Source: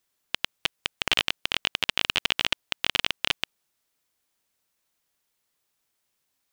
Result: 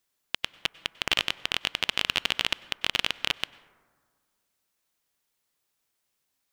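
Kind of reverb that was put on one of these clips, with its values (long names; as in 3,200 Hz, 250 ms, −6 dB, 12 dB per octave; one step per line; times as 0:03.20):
dense smooth reverb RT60 1.7 s, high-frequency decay 0.3×, pre-delay 85 ms, DRR 19 dB
level −1.5 dB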